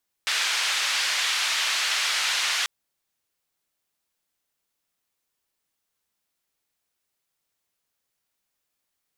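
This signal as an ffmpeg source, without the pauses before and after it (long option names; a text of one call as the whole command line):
ffmpeg -f lavfi -i "anoisesrc=color=white:duration=2.39:sample_rate=44100:seed=1,highpass=frequency=1400,lowpass=frequency=4300,volume=-11.7dB" out.wav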